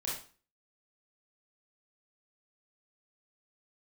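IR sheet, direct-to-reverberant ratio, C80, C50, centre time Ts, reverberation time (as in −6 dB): −6.0 dB, 9.0 dB, 2.5 dB, 44 ms, 0.40 s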